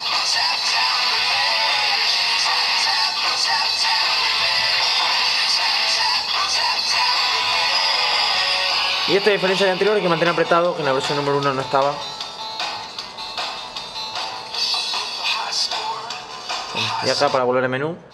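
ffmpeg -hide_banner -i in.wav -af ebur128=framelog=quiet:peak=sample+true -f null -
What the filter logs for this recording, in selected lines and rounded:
Integrated loudness:
  I:         -17.8 LUFS
  Threshold: -28.0 LUFS
Loudness range:
  LRA:         7.0 LU
  Threshold: -38.0 LUFS
  LRA low:   -23.3 LUFS
  LRA high:  -16.3 LUFS
Sample peak:
  Peak:       -2.1 dBFS
True peak:
  Peak:       -2.1 dBFS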